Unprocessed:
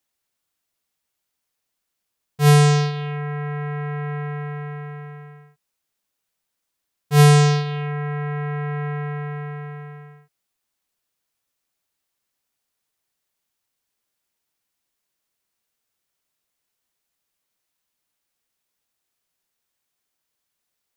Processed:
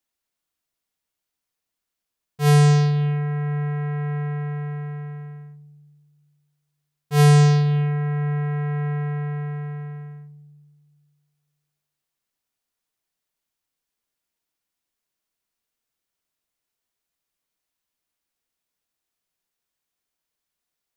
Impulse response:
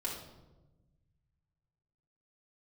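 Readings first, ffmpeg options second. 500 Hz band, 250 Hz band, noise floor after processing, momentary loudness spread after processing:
-2.5 dB, n/a, -84 dBFS, 18 LU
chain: -filter_complex "[0:a]asplit=2[a][b];[1:a]atrim=start_sample=2205,lowpass=8.2k,lowshelf=f=420:g=8.5[c];[b][c]afir=irnorm=-1:irlink=0,volume=-16dB[d];[a][d]amix=inputs=2:normalize=0,volume=-5dB"

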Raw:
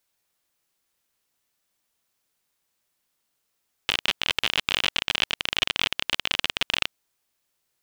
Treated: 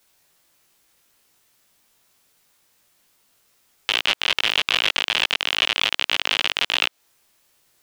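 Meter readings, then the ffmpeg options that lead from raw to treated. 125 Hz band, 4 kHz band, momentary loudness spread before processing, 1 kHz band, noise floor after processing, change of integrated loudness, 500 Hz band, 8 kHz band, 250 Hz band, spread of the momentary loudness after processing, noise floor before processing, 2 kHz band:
-2.0 dB, +4.5 dB, 3 LU, +5.0 dB, -69 dBFS, +4.5 dB, +4.0 dB, +3.0 dB, 0.0 dB, 3 LU, -77 dBFS, +5.0 dB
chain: -filter_complex "[0:a]flanger=delay=17:depth=3.1:speed=2.5,acrossover=split=330|5700[a][b][c];[a]acompressor=threshold=-58dB:ratio=4[d];[b]acompressor=threshold=-28dB:ratio=4[e];[c]acompressor=threshold=-50dB:ratio=4[f];[d][e][f]amix=inputs=3:normalize=0,alimiter=level_in=19dB:limit=-1dB:release=50:level=0:latency=1,volume=-2.5dB"

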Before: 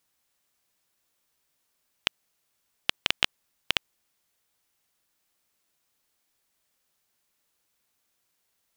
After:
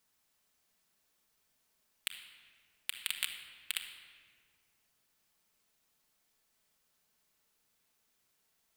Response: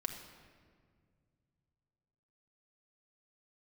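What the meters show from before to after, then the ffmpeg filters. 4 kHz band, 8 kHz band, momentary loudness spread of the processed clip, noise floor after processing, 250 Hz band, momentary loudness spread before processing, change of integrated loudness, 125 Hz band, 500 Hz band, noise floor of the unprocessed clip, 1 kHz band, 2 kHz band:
-10.5 dB, +0.5 dB, 18 LU, -77 dBFS, under -20 dB, 6 LU, -10.0 dB, under -20 dB, -25.0 dB, -76 dBFS, -18.0 dB, -10.5 dB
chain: -filter_complex "[0:a]aeval=exprs='0.211*(abs(mod(val(0)/0.211+3,4)-2)-1)':c=same[a];[1:a]atrim=start_sample=2205[b];[a][b]afir=irnorm=-1:irlink=0,volume=-1dB"

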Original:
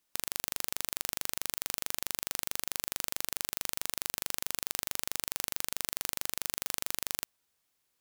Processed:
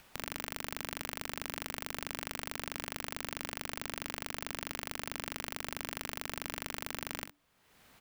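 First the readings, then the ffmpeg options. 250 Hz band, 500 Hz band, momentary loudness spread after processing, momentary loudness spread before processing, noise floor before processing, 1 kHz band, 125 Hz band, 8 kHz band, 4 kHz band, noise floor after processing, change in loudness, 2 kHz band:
+5.0 dB, +3.0 dB, 0 LU, 0 LU, -79 dBFS, +2.5 dB, +5.5 dB, -9.5 dB, -4.0 dB, -66 dBFS, -6.0 dB, +1.5 dB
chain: -af "bass=f=250:g=0,treble=f=4k:g=-13,alimiter=limit=-23.5dB:level=0:latency=1:release=233,acompressor=mode=upward:threshold=-60dB:ratio=2.5,afreqshift=-290,aecho=1:1:24|45|65:0.158|0.282|0.2,volume=11dB"

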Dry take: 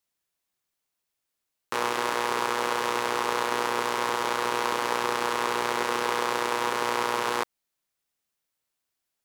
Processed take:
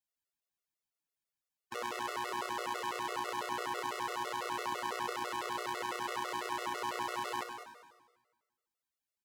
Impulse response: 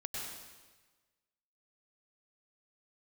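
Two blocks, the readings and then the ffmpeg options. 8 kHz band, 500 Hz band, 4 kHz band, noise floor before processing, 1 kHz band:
-11.0 dB, -12.5 dB, -10.0 dB, -83 dBFS, -9.5 dB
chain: -filter_complex "[0:a]aecho=1:1:103|201:0.316|0.266,asplit=2[a][b];[1:a]atrim=start_sample=2205,adelay=64[c];[b][c]afir=irnorm=-1:irlink=0,volume=-9.5dB[d];[a][d]amix=inputs=2:normalize=0,afftfilt=real='re*gt(sin(2*PI*6*pts/sr)*(1-2*mod(floor(b*sr/1024/370),2)),0)':imag='im*gt(sin(2*PI*6*pts/sr)*(1-2*mod(floor(b*sr/1024/370),2)),0)':win_size=1024:overlap=0.75,volume=-8.5dB"

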